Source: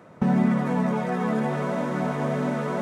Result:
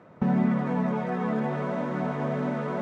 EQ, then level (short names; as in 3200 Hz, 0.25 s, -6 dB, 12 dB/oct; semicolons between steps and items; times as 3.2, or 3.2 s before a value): air absorption 51 m; high shelf 6200 Hz -10 dB; -2.5 dB